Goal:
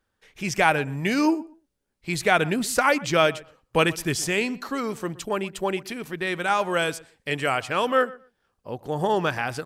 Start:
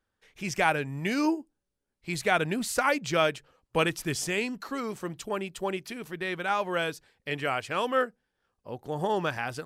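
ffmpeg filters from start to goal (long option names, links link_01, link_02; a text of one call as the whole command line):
ffmpeg -i in.wav -filter_complex "[0:a]asettb=1/sr,asplit=3[link_01][link_02][link_03];[link_01]atrim=end=6.274[link_04];[link_02]atrim=start=6.27:end=7.57,asetpts=PTS-STARTPTS,afade=type=in:duration=0.004:curve=qsin,afade=type=out:start_time=1.296:duration=0.004:curve=qsin,equalizer=frequency=8200:width_type=o:width=0.7:gain=8[link_05];[link_03]atrim=start=7.566[link_06];[link_04][link_05]acrossfade=duration=0.004:curve1=hsin:curve2=qsin[link_07];[link_07][link_06]acrossfade=duration=0.004:curve1=qsin:curve2=hsin,asplit=2[link_08][link_09];[link_09]adelay=122,lowpass=frequency=2700:poles=1,volume=-20dB,asplit=2[link_10][link_11];[link_11]adelay=122,lowpass=frequency=2700:poles=1,volume=0.17[link_12];[link_10][link_12]amix=inputs=2:normalize=0[link_13];[link_08][link_13]amix=inputs=2:normalize=0,volume=5dB" out.wav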